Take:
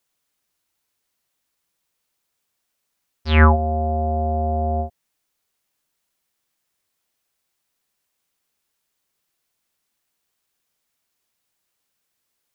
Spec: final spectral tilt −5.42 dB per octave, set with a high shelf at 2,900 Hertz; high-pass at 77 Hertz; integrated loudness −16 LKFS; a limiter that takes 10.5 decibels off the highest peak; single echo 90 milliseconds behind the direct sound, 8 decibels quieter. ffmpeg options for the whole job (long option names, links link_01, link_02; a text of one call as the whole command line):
ffmpeg -i in.wav -af "highpass=77,highshelf=frequency=2900:gain=-4,alimiter=limit=-10dB:level=0:latency=1,aecho=1:1:90:0.398,volume=5.5dB" out.wav